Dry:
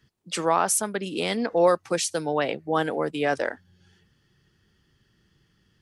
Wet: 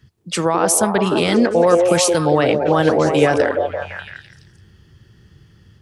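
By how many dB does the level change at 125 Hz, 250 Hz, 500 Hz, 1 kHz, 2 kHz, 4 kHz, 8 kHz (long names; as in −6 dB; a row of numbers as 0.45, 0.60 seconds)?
+14.0, +12.0, +10.0, +7.0, +8.0, +8.0, +7.5 decibels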